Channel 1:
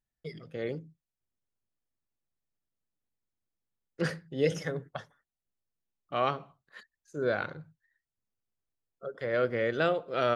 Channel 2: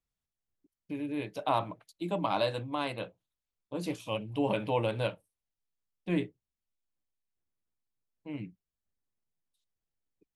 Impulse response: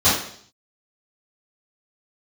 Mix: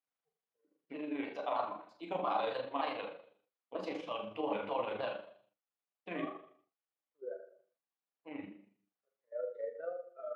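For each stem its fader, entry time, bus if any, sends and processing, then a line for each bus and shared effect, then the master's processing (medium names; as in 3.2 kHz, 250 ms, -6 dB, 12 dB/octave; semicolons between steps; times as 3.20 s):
-12.0 dB, 0.00 s, send -22 dB, level held to a coarse grid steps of 15 dB; bit crusher 7-bit; spectral contrast expander 2.5:1; auto duck -9 dB, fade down 0.30 s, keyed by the second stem
-0.5 dB, 0.00 s, send -19.5 dB, peak limiter -23.5 dBFS, peak gain reduction 8.5 dB; vibrato with a chosen wave saw down 3.2 Hz, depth 160 cents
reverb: on, RT60 0.60 s, pre-delay 3 ms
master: AM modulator 25 Hz, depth 30%; band-pass 490–2700 Hz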